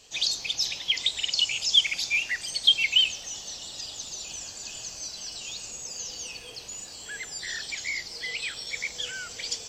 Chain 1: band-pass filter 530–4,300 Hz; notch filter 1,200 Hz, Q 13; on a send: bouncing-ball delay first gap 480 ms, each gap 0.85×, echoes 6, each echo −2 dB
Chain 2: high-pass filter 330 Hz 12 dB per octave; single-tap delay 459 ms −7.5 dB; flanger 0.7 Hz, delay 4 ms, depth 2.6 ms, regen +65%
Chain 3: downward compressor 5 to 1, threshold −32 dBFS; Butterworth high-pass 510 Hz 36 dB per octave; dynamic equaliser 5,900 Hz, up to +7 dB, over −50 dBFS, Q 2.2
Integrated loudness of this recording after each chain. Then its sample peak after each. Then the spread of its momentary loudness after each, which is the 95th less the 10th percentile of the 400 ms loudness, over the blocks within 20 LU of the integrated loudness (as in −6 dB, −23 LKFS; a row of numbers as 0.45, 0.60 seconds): −23.5, −30.5, −31.5 LKFS; −7.0, −11.0, −17.0 dBFS; 17, 15, 3 LU